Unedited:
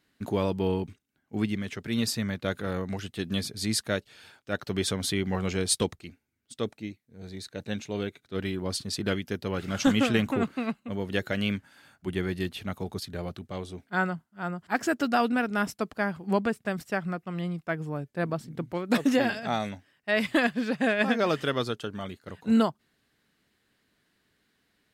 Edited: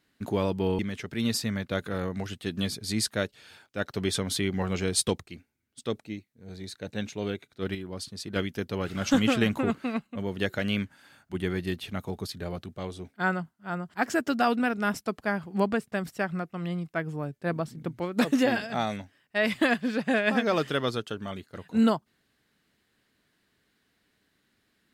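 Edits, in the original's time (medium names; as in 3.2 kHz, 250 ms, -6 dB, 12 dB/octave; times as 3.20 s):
0.79–1.52 s: delete
8.48–9.09 s: gain -6 dB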